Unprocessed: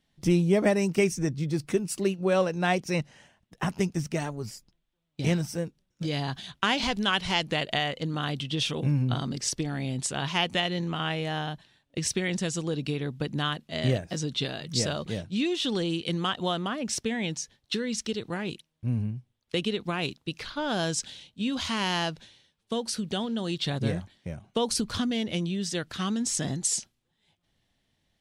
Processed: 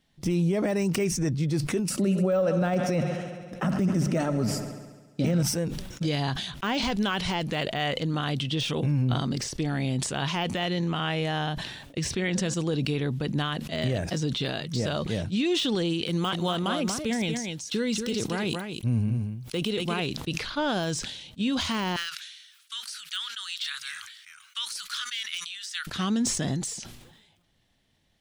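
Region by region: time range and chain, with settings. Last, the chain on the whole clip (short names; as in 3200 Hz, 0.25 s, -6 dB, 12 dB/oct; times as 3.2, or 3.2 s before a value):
1.9–5.43 notches 50/100/150 Hz + small resonant body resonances 230/550/1300 Hz, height 13 dB, ringing for 25 ms + multi-head echo 69 ms, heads first and second, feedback 66%, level -21 dB
12.05–12.54 high shelf 9200 Hz -12 dB + de-hum 104.3 Hz, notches 16
16.09–20 high shelf 7900 Hz +12 dB + notch 1800 Hz, Q 11 + echo 0.235 s -7.5 dB
21.96–25.87 elliptic high-pass 1300 Hz, stop band 50 dB + high shelf 9000 Hz +7.5 dB
whole clip: de-esser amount 85%; limiter -21 dBFS; sustainer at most 49 dB/s; gain +3.5 dB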